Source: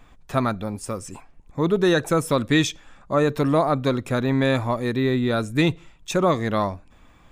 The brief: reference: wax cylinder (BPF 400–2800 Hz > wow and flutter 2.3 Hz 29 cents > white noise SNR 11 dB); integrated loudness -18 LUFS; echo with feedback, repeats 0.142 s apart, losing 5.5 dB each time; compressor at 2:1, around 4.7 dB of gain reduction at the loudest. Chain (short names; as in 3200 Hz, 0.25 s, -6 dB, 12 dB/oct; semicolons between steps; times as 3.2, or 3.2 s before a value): compressor 2:1, threshold -23 dBFS; BPF 400–2800 Hz; feedback echo 0.142 s, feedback 53%, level -5.5 dB; wow and flutter 2.3 Hz 29 cents; white noise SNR 11 dB; gain +10.5 dB